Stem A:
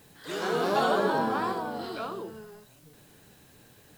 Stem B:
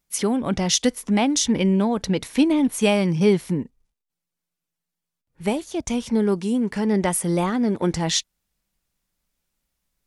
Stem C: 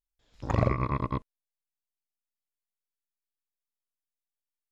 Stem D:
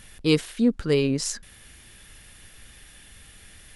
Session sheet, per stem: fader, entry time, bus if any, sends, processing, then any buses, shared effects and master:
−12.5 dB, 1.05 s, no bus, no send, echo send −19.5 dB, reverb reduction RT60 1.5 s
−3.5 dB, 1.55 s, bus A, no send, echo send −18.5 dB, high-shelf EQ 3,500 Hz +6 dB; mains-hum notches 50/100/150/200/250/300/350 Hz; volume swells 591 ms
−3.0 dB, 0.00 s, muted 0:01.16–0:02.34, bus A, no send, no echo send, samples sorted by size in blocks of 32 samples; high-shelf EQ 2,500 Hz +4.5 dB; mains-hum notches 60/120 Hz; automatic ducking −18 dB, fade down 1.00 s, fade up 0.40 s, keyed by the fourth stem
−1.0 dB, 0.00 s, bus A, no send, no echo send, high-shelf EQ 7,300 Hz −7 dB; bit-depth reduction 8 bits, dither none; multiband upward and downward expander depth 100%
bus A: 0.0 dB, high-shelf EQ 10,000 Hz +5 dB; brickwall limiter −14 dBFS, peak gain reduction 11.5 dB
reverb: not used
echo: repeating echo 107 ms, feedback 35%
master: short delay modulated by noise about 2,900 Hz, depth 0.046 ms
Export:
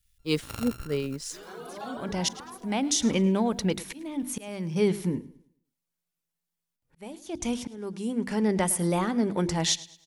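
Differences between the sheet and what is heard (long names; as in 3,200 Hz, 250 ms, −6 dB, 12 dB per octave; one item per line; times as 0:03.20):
stem B: missing high-shelf EQ 3,500 Hz +6 dB
stem D −1.0 dB → −12.0 dB
master: missing short delay modulated by noise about 2,900 Hz, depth 0.046 ms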